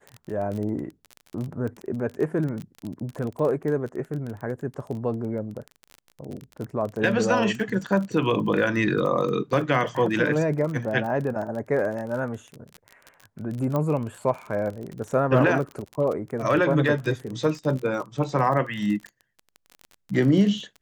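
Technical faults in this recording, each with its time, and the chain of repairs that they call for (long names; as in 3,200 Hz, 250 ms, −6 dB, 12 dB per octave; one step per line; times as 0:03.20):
surface crackle 28 per second −30 dBFS
0:13.76: click −15 dBFS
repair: click removal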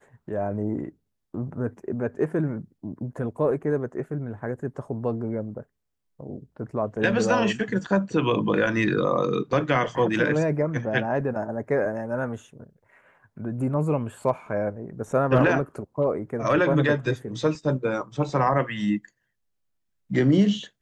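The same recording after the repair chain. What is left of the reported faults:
none of them is left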